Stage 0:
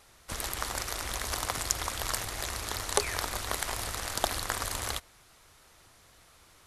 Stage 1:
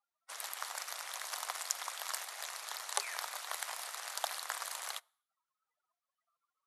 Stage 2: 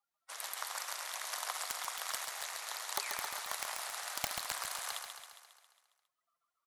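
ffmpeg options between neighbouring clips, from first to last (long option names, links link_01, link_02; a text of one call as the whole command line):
ffmpeg -i in.wav -af "afftdn=noise_reduction=32:noise_floor=-51,highpass=frequency=660:width=0.5412,highpass=frequency=660:width=1.3066,volume=-6.5dB" out.wav
ffmpeg -i in.wav -filter_complex "[0:a]aeval=exprs='(mod(10.6*val(0)+1,2)-1)/10.6':channel_layout=same,asplit=2[link_01][link_02];[link_02]aecho=0:1:136|272|408|544|680|816|952|1088:0.501|0.291|0.169|0.0978|0.0567|0.0329|0.0191|0.0111[link_03];[link_01][link_03]amix=inputs=2:normalize=0" out.wav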